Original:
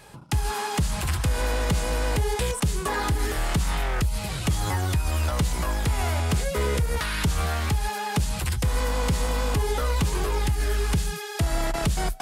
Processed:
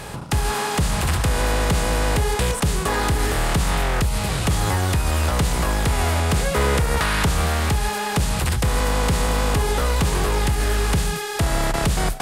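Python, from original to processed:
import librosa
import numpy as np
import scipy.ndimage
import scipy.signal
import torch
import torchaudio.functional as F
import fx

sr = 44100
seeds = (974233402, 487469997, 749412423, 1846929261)

y = fx.bin_compress(x, sr, power=0.6)
y = fx.peak_eq(y, sr, hz=1200.0, db=3.5, octaves=2.2, at=(6.44, 7.29))
y = y * 10.0 ** (1.5 / 20.0)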